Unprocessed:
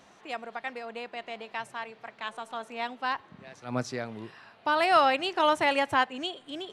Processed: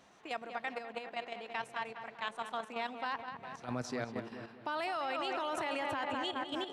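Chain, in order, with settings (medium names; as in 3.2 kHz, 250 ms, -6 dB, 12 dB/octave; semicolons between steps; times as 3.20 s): on a send: filtered feedback delay 203 ms, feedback 58%, low-pass 3 kHz, level -8 dB; on the sum: peak limiter -21 dBFS, peak gain reduction 11 dB; level held to a coarse grid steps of 9 dB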